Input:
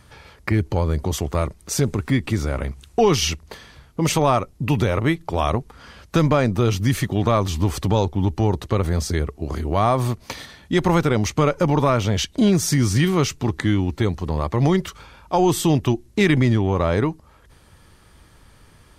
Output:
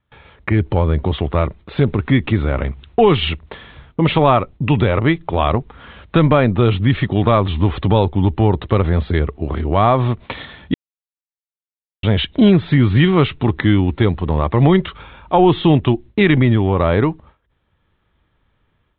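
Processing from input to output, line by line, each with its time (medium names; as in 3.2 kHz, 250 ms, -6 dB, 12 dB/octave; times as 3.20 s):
10.74–12.03 s: mute
whole clip: steep low-pass 3.8 kHz 96 dB/octave; gate with hold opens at -38 dBFS; level rider gain up to 8.5 dB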